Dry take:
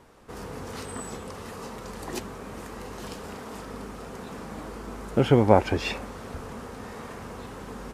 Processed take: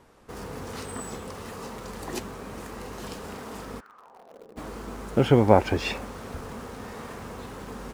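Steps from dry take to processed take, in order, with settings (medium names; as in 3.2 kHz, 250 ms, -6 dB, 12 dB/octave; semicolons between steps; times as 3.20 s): 3.79–4.56 s: band-pass filter 1.6 kHz -> 380 Hz, Q 4.1; in parallel at -10 dB: bit crusher 7-bit; on the sum: trim -2 dB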